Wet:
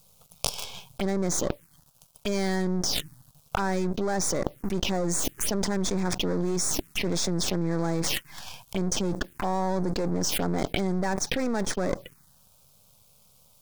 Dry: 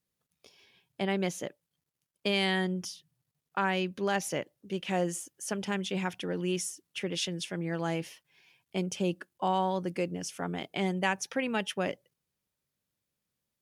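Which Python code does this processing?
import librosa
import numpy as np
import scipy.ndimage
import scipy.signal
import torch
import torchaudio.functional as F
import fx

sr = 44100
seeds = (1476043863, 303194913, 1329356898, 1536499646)

y = np.where(x < 0.0, 10.0 ** (-12.0 / 20.0) * x, x)
y = fx.leveller(y, sr, passes=3)
y = fx.env_phaser(y, sr, low_hz=310.0, high_hz=2900.0, full_db=-23.5)
y = fx.env_flatten(y, sr, amount_pct=100)
y = y * librosa.db_to_amplitude(-4.0)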